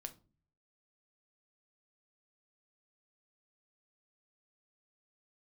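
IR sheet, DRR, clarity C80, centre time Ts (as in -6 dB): 7.5 dB, 23.5 dB, 6 ms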